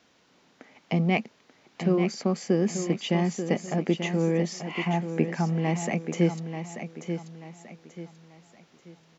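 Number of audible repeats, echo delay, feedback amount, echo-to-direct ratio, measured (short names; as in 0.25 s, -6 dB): 3, 0.886 s, 35%, -8.0 dB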